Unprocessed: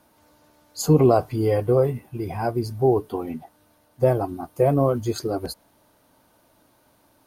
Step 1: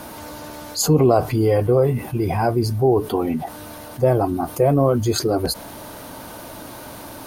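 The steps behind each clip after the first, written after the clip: level flattener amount 50%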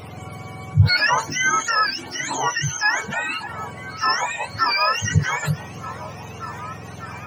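spectrum inverted on a logarithmic axis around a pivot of 820 Hz; repeats whose band climbs or falls 602 ms, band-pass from 400 Hz, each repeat 0.7 oct, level -7 dB

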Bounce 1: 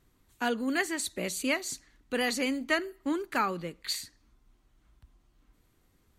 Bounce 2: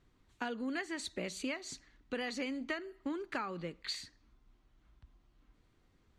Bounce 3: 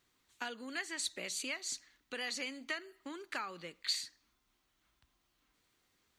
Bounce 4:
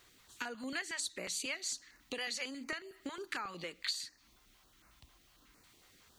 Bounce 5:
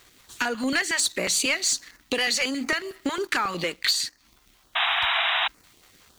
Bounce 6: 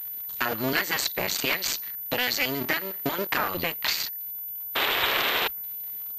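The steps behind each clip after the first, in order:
low-pass 5.2 kHz 12 dB/octave; compression 10:1, threshold -32 dBFS, peak gain reduction 11 dB; trim -2 dB
tilt EQ +3.5 dB/octave; trim -2.5 dB
compression 2.5:1, threshold -54 dBFS, peak gain reduction 16 dB; step-sequenced notch 11 Hz 200–3300 Hz; trim +12.5 dB
waveshaping leveller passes 2; painted sound noise, 4.75–5.48 s, 640–3900 Hz -32 dBFS; trim +8.5 dB
cycle switcher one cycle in 2, muted; class-D stage that switches slowly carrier 14 kHz; trim +1.5 dB

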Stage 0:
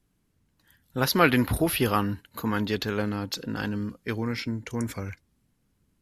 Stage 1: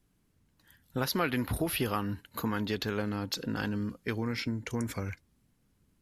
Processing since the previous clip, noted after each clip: compression 3:1, threshold -29 dBFS, peak gain reduction 11.5 dB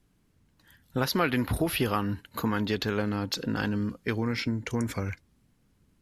treble shelf 9.1 kHz -6 dB; trim +4 dB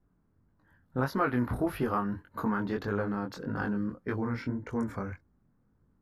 resonant high shelf 2 kHz -11.5 dB, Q 1.5; chorus 1.7 Hz, delay 20 ms, depth 5.4 ms; tape noise reduction on one side only decoder only

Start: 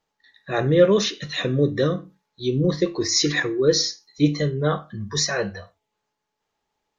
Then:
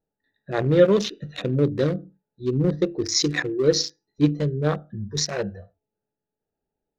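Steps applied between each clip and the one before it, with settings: local Wiener filter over 41 samples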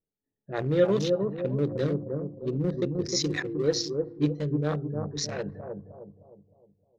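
level-controlled noise filter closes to 490 Hz, open at -20 dBFS; on a send: bucket-brigade echo 308 ms, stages 2048, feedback 42%, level -4 dB; on the sum: trim -6.5 dB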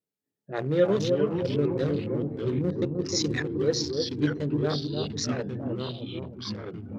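high-pass 110 Hz; ever faster or slower copies 257 ms, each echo -3 st, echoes 3, each echo -6 dB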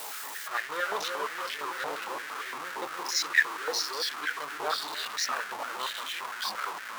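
jump at every zero crossing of -27 dBFS; step-sequenced high-pass 8.7 Hz 880–1800 Hz; trim -3 dB

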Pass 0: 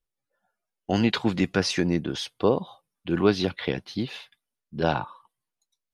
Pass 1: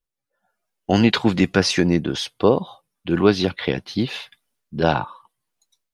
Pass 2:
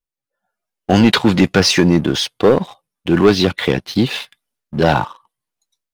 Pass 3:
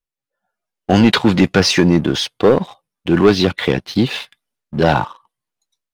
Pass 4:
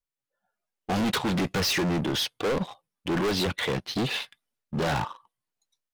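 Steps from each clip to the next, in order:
level rider gain up to 13.5 dB; trim -1 dB
waveshaping leveller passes 2
treble shelf 7.4 kHz -5 dB
overload inside the chain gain 19 dB; trim -4.5 dB

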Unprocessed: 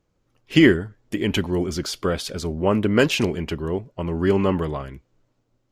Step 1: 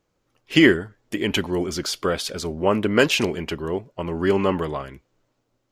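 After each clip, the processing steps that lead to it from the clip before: bass shelf 240 Hz -9 dB; trim +2.5 dB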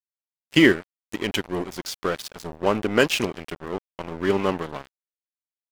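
crossover distortion -28.5 dBFS

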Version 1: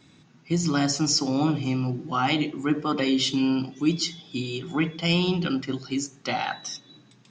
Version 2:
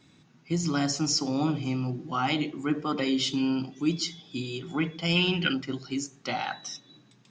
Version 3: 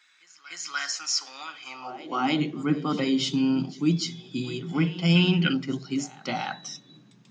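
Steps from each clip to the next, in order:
time-frequency box 5.16–5.53 s, 1.4–3.2 kHz +11 dB; trim -3.5 dB
pre-echo 297 ms -18 dB; high-pass sweep 1.6 kHz -> 160 Hz, 1.58–2.44 s

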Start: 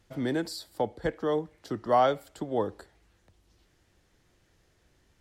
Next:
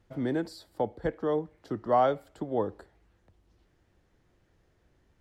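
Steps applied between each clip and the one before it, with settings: treble shelf 2.5 kHz -11.5 dB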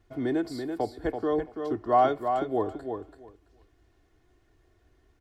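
comb 2.8 ms, depth 62%; on a send: feedback delay 334 ms, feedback 16%, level -6.5 dB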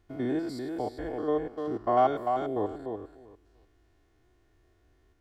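spectrogram pixelated in time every 100 ms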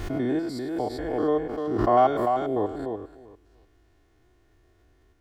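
swell ahead of each attack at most 37 dB/s; trim +3.5 dB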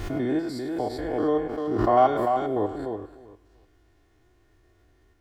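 on a send at -11 dB: tilt shelf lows -8 dB + reverberation RT60 0.75 s, pre-delay 5 ms

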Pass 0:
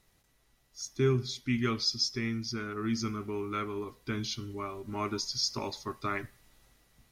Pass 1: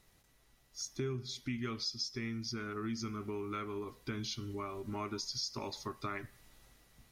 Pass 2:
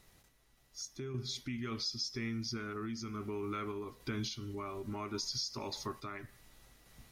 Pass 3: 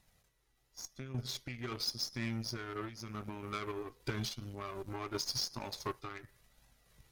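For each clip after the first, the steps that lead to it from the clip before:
compression 3:1, threshold -39 dBFS, peak gain reduction 13 dB; trim +1 dB
in parallel at +2 dB: peak limiter -35.5 dBFS, peak gain reduction 10 dB; on the sum: random-step tremolo; trim -2.5 dB
flange 0.9 Hz, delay 1.1 ms, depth 1.5 ms, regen -30%; Chebyshev shaper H 2 -16 dB, 7 -21 dB, 8 -25 dB, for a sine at -29 dBFS; trim +5.5 dB

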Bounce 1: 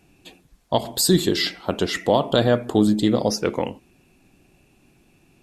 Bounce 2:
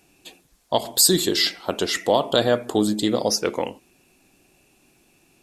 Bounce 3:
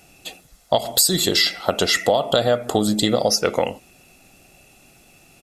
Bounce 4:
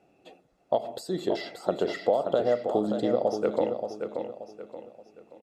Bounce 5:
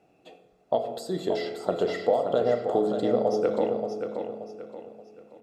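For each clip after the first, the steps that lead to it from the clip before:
tone controls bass -8 dB, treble +6 dB
comb 1.5 ms, depth 46%; compression 5:1, threshold -22 dBFS, peak gain reduction 10.5 dB; trim +7.5 dB
band-pass filter 440 Hz, Q 1; on a send: feedback delay 578 ms, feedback 36%, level -7 dB; on the sum: trim -4.5 dB
reverberation RT60 1.3 s, pre-delay 3 ms, DRR 7 dB

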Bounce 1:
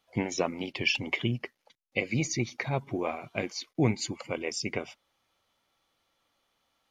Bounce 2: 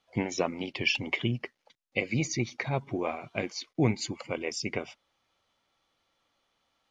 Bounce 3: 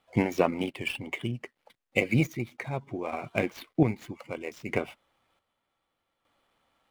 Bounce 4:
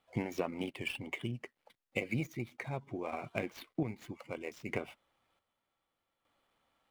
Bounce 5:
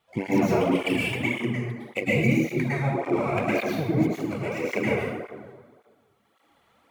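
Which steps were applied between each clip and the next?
low-pass 7.6 kHz 12 dB/octave
median filter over 9 samples; square tremolo 0.64 Hz, depth 60%, duty 45%; dynamic bell 6.8 kHz, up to -6 dB, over -59 dBFS, Q 1.4; trim +5 dB
compression 3:1, threshold -27 dBFS, peak gain reduction 9 dB; trim -5 dB
plate-style reverb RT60 1.6 s, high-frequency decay 0.45×, pre-delay 95 ms, DRR -8 dB; cancelling through-zero flanger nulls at 1.8 Hz, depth 4.1 ms; trim +8.5 dB

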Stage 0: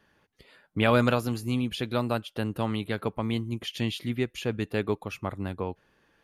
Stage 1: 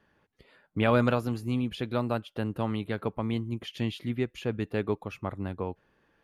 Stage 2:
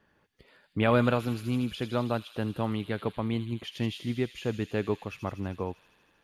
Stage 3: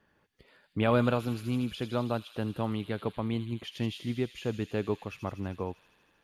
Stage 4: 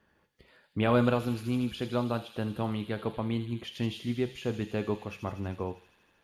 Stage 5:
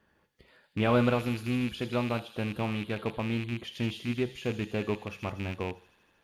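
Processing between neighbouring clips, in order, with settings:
treble shelf 3.1 kHz -9 dB; trim -1 dB
feedback echo behind a high-pass 79 ms, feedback 81%, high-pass 4 kHz, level -4.5 dB
dynamic bell 1.9 kHz, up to -4 dB, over -45 dBFS, Q 2.1; trim -1.5 dB
reverberation RT60 0.40 s, pre-delay 6 ms, DRR 9 dB
rattle on loud lows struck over -33 dBFS, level -28 dBFS

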